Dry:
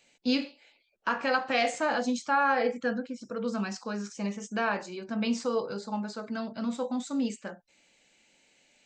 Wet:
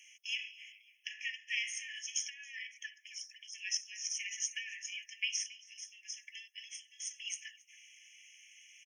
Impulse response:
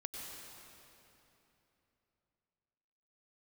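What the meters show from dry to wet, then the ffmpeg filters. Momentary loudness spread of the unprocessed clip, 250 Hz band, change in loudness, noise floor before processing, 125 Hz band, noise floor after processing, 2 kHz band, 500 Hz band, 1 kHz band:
10 LU, below −40 dB, −9.0 dB, −68 dBFS, below −40 dB, −67 dBFS, −8.0 dB, below −40 dB, below −40 dB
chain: -filter_complex "[0:a]aeval=exprs='0.188*(cos(1*acos(clip(val(0)/0.188,-1,1)))-cos(1*PI/2))+0.00596*(cos(2*acos(clip(val(0)/0.188,-1,1)))-cos(2*PI/2))':channel_layout=same,acrossover=split=290[link_01][link_02];[link_02]acompressor=threshold=-35dB:ratio=10[link_03];[link_01][link_03]amix=inputs=2:normalize=0,equalizer=frequency=1300:width_type=o:width=1.3:gain=-14,asplit=2[link_04][link_05];[link_05]adelay=275,lowpass=frequency=3300:poles=1,volume=-17.5dB,asplit=2[link_06][link_07];[link_07]adelay=275,lowpass=frequency=3300:poles=1,volume=0.38,asplit=2[link_08][link_09];[link_09]adelay=275,lowpass=frequency=3300:poles=1,volume=0.38[link_10];[link_04][link_06][link_08][link_10]amix=inputs=4:normalize=0,afftfilt=real='re*eq(mod(floor(b*sr/1024/1700),2),1)':imag='im*eq(mod(floor(b*sr/1024/1700),2),1)':win_size=1024:overlap=0.75,volume=12.5dB"

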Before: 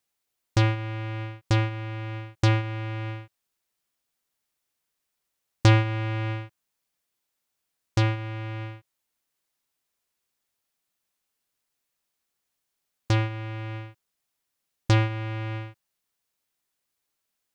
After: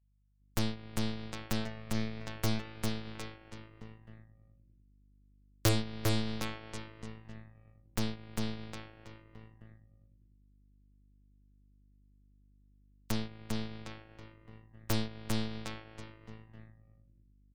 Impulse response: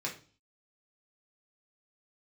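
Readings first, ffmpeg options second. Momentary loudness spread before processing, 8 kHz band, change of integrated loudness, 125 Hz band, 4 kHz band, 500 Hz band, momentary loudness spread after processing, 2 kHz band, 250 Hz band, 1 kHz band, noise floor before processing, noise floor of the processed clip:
14 LU, can't be measured, −10.5 dB, −13.0 dB, −3.5 dB, −7.0 dB, 21 LU, −10.5 dB, −4.0 dB, −11.0 dB, −81 dBFS, −64 dBFS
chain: -filter_complex "[0:a]acrossover=split=140|3800[link_01][link_02][link_03];[link_03]acrusher=bits=3:mix=0:aa=0.000001[link_04];[link_01][link_02][link_04]amix=inputs=3:normalize=0,aeval=exprs='val(0)+0.00316*(sin(2*PI*50*n/s)+sin(2*PI*2*50*n/s)/2+sin(2*PI*3*50*n/s)/3+sin(2*PI*4*50*n/s)/4+sin(2*PI*5*50*n/s)/5)':channel_layout=same,asplit=2[link_05][link_06];[link_06]aecho=0:1:400|760|1084|1376|1638:0.631|0.398|0.251|0.158|0.1[link_07];[link_05][link_07]amix=inputs=2:normalize=0,afftdn=noise_reduction=27:noise_floor=-44,aeval=exprs='0.473*(cos(1*acos(clip(val(0)/0.473,-1,1)))-cos(1*PI/2))+0.106*(cos(3*acos(clip(val(0)/0.473,-1,1)))-cos(3*PI/2))+0.00335*(cos(7*acos(clip(val(0)/0.473,-1,1)))-cos(7*PI/2))+0.0668*(cos(8*acos(clip(val(0)/0.473,-1,1)))-cos(8*PI/2))':channel_layout=same,highshelf=frequency=4500:gain=11.5,volume=-8.5dB"

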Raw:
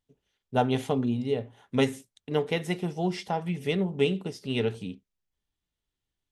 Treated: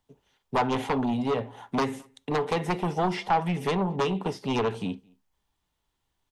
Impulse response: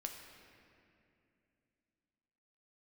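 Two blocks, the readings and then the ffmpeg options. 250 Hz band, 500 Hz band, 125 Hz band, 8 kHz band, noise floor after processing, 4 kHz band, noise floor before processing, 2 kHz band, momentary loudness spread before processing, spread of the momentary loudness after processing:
+0.5 dB, −0.5 dB, −0.5 dB, +1.0 dB, −79 dBFS, −1.0 dB, below −85 dBFS, +1.5 dB, 6 LU, 6 LU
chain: -filter_complex "[0:a]acrossover=split=140|1400|3400[link_01][link_02][link_03][link_04];[link_01]acompressor=threshold=-48dB:ratio=4[link_05];[link_02]acompressor=threshold=-28dB:ratio=4[link_06];[link_03]acompressor=threshold=-39dB:ratio=4[link_07];[link_04]acompressor=threshold=-55dB:ratio=4[link_08];[link_05][link_06][link_07][link_08]amix=inputs=4:normalize=0,aeval=exprs='0.141*sin(PI/2*2.82*val(0)/0.141)':channel_layout=same,equalizer=frequency=930:width_type=o:width=0.83:gain=10,asplit=2[link_09][link_10];[link_10]adelay=215.7,volume=-29dB,highshelf=frequency=4000:gain=-4.85[link_11];[link_09][link_11]amix=inputs=2:normalize=0,asplit=2[link_12][link_13];[1:a]atrim=start_sample=2205,atrim=end_sample=3528[link_14];[link_13][link_14]afir=irnorm=-1:irlink=0,volume=-11dB[link_15];[link_12][link_15]amix=inputs=2:normalize=0,volume=-7.5dB"

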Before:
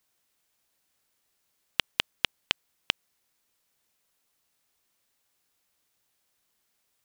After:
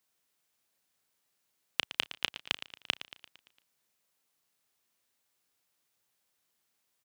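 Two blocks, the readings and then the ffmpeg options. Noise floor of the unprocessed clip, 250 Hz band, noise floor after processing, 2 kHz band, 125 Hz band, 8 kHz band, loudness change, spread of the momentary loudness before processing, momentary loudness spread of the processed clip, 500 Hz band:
−76 dBFS, −3.5 dB, −79 dBFS, −3.5 dB, −5.0 dB, −3.5 dB, −3.5 dB, 3 LU, 7 LU, −3.5 dB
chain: -filter_complex "[0:a]highpass=82,asplit=2[link_01][link_02];[link_02]adelay=34,volume=-12.5dB[link_03];[link_01][link_03]amix=inputs=2:normalize=0,aecho=1:1:114|228|342|456|570|684:0.2|0.11|0.0604|0.0332|0.0183|0.01,volume=-4dB"

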